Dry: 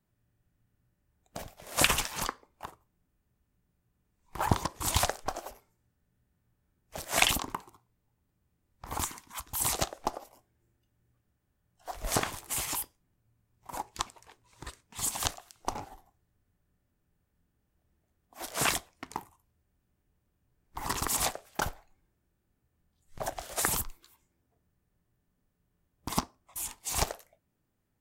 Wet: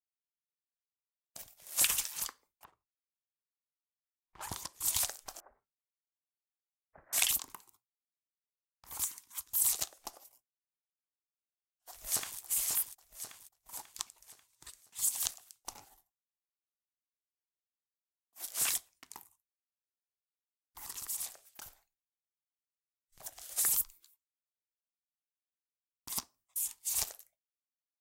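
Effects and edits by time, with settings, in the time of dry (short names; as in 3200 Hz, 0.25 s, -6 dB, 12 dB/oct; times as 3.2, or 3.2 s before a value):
2.64–4.73 low-pass opened by the level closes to 1600 Hz, open at -25.5 dBFS
5.4–7.13 steep low-pass 1800 Hz 48 dB/oct
11.9–12.4 echo throw 0.54 s, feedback 50%, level -5.5 dB
20.83–23.45 compressor, threshold -34 dBFS
whole clip: expander -52 dBFS; pre-emphasis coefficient 0.9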